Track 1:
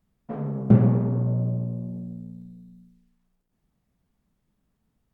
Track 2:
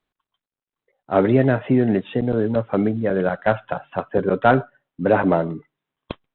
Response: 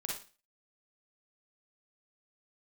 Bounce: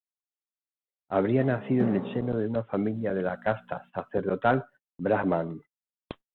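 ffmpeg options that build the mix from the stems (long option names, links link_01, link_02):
-filter_complex "[0:a]highpass=frequency=200:width=0.5412,highpass=frequency=200:width=1.3066,lowshelf=frequency=330:gain=-6,adelay=1100,volume=-5dB,asplit=3[link_01][link_02][link_03];[link_01]atrim=end=2.37,asetpts=PTS-STARTPTS,afade=type=out:start_time=2.366:duration=0.004:curve=hsin[link_04];[link_02]atrim=start=2.37:end=2.92,asetpts=PTS-STARTPTS,volume=0[link_05];[link_03]atrim=start=2.92,asetpts=PTS-STARTPTS,afade=type=in:duration=0.004:curve=hsin[link_06];[link_04][link_05][link_06]concat=n=3:v=0:a=1[link_07];[1:a]volume=-8dB[link_08];[link_07][link_08]amix=inputs=2:normalize=0,agate=range=-32dB:threshold=-47dB:ratio=16:detection=peak"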